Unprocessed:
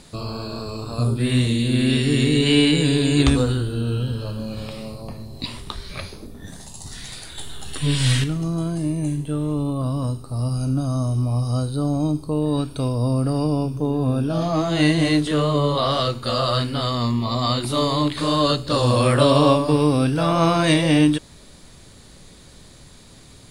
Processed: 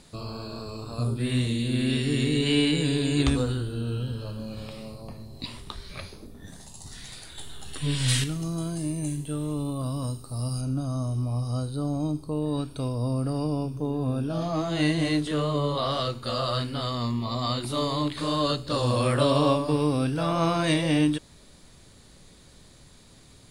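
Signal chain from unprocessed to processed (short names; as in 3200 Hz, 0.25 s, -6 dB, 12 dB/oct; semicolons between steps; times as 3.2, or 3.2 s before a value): 8.08–10.61 high shelf 3600 Hz +10 dB; gain -6.5 dB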